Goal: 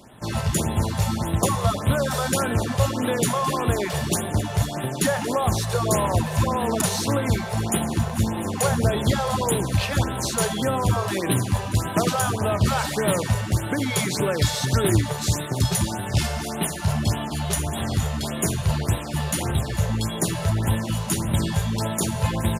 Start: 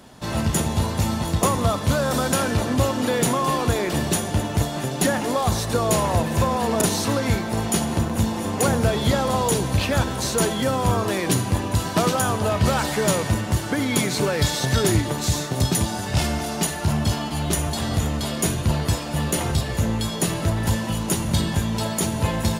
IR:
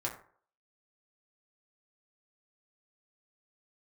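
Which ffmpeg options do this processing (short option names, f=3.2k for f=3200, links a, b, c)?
-filter_complex "[0:a]asplit=2[a][b];[1:a]atrim=start_sample=2205[c];[b][c]afir=irnorm=-1:irlink=0,volume=-13dB[d];[a][d]amix=inputs=2:normalize=0,aresample=32000,aresample=44100,afftfilt=real='re*(1-between(b*sr/1024,250*pow(5900/250,0.5+0.5*sin(2*PI*1.7*pts/sr))/1.41,250*pow(5900/250,0.5+0.5*sin(2*PI*1.7*pts/sr))*1.41))':imag='im*(1-between(b*sr/1024,250*pow(5900/250,0.5+0.5*sin(2*PI*1.7*pts/sr))/1.41,250*pow(5900/250,0.5+0.5*sin(2*PI*1.7*pts/sr))*1.41))':win_size=1024:overlap=0.75,volume=-2.5dB"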